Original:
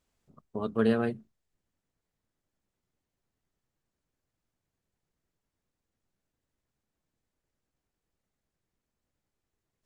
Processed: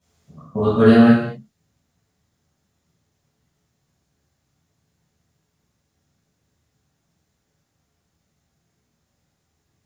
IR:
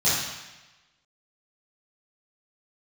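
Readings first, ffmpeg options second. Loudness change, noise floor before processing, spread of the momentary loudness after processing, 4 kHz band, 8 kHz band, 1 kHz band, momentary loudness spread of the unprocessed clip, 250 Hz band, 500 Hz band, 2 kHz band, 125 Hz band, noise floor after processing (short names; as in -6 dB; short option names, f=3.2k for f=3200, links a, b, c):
+14.5 dB, under -85 dBFS, 20 LU, +14.5 dB, n/a, +14.5 dB, 16 LU, +16.5 dB, +12.5 dB, +14.0 dB, +16.5 dB, -73 dBFS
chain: -filter_complex "[1:a]atrim=start_sample=2205,afade=t=out:st=0.31:d=0.01,atrim=end_sample=14112[a];[0:a][a]afir=irnorm=-1:irlink=0,volume=-1dB"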